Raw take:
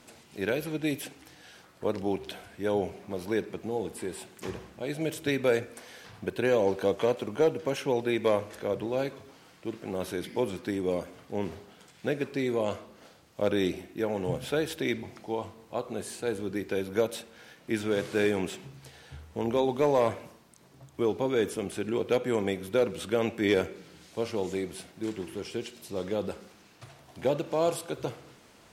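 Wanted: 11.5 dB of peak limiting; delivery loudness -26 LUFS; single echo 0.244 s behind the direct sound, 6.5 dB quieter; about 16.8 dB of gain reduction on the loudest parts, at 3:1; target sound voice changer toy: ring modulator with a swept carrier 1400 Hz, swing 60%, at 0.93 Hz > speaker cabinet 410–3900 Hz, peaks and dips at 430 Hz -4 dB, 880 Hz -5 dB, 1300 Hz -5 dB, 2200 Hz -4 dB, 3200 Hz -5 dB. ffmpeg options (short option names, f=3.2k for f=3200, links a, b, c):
-af "acompressor=threshold=-44dB:ratio=3,alimiter=level_in=15dB:limit=-24dB:level=0:latency=1,volume=-15dB,aecho=1:1:244:0.473,aeval=exprs='val(0)*sin(2*PI*1400*n/s+1400*0.6/0.93*sin(2*PI*0.93*n/s))':c=same,highpass=410,equalizer=f=430:t=q:w=4:g=-4,equalizer=f=880:t=q:w=4:g=-5,equalizer=f=1.3k:t=q:w=4:g=-5,equalizer=f=2.2k:t=q:w=4:g=-4,equalizer=f=3.2k:t=q:w=4:g=-5,lowpass=f=3.9k:w=0.5412,lowpass=f=3.9k:w=1.3066,volume=28.5dB"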